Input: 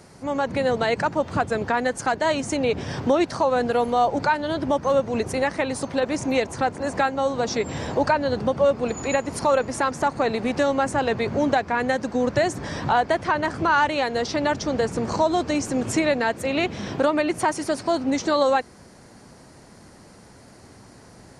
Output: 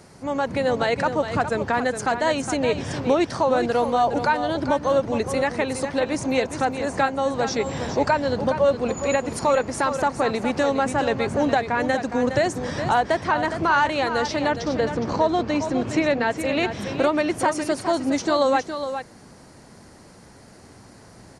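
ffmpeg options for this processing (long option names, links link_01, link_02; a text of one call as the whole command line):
ffmpeg -i in.wav -filter_complex "[0:a]asettb=1/sr,asplit=3[link_01][link_02][link_03];[link_01]atrim=end=14.484[link_04];[link_02]atrim=start=14.48:end=16.36,asetpts=PTS-STARTPTS,afade=type=in:duration=0.004:curve=qsin,afade=type=out:start_time=1.876:duration=0.004:curve=qsin,lowpass=4500[link_05];[link_03]atrim=start=16.356[link_06];[link_04][link_05]acrossfade=duration=0.004:curve1=hsin:curve2=qsin[link_07];[link_07][link_06]acrossfade=duration=0.004:curve1=qsin:curve2=hsin,asplit=2[link_08][link_09];[link_09]aecho=0:1:414:0.355[link_10];[link_08][link_10]amix=inputs=2:normalize=0" out.wav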